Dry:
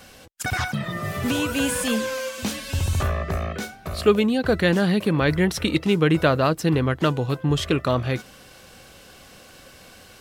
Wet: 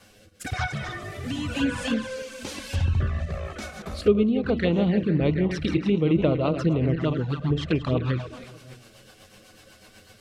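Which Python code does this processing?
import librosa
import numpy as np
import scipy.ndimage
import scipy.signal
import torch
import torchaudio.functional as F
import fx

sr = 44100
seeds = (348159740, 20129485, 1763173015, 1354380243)

y = fx.reverse_delay_fb(x, sr, ms=148, feedback_pct=55, wet_db=-8)
y = fx.env_flanger(y, sr, rest_ms=11.0, full_db=-15.5)
y = fx.rotary_switch(y, sr, hz=1.0, then_hz=8.0, switch_at_s=4.94)
y = fx.env_lowpass_down(y, sr, base_hz=2400.0, full_db=-18.5)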